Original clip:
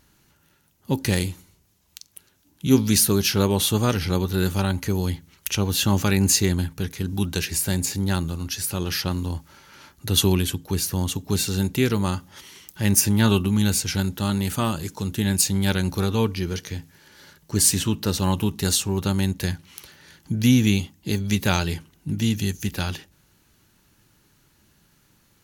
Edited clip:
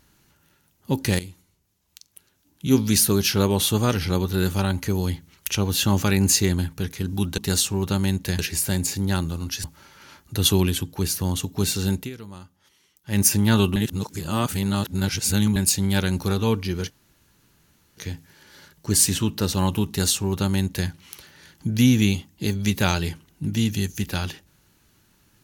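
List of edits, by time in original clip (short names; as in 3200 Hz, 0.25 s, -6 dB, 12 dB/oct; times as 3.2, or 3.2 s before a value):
1.19–3.09 fade in, from -12.5 dB
8.63–9.36 cut
11.68–12.91 dip -17 dB, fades 0.14 s
13.48–15.28 reverse
16.62 insert room tone 1.07 s
18.53–19.54 copy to 7.38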